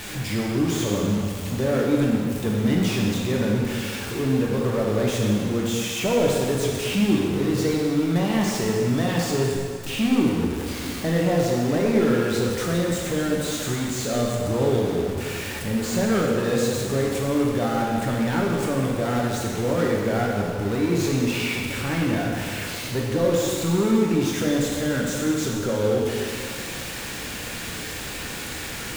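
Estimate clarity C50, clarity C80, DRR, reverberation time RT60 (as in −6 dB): 0.0 dB, 2.0 dB, −2.5 dB, 2.1 s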